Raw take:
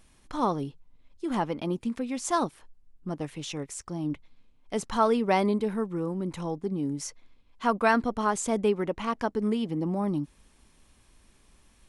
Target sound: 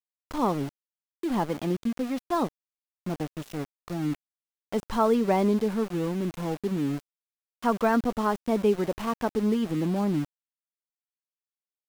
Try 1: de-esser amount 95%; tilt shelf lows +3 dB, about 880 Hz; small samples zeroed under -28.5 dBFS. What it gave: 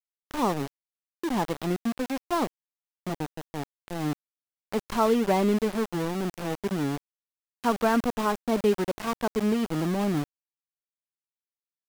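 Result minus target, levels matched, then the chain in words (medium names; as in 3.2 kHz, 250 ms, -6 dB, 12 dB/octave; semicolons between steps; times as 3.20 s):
small samples zeroed: distortion +8 dB
de-esser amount 95%; tilt shelf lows +3 dB, about 880 Hz; small samples zeroed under -35 dBFS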